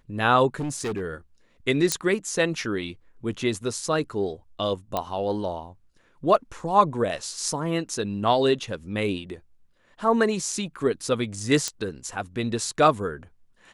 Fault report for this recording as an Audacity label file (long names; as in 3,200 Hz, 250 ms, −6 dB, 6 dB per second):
0.550000	1.010000	clipping −25 dBFS
1.920000	1.920000	click −6 dBFS
4.970000	4.970000	click −12 dBFS
11.680000	11.680000	click −12 dBFS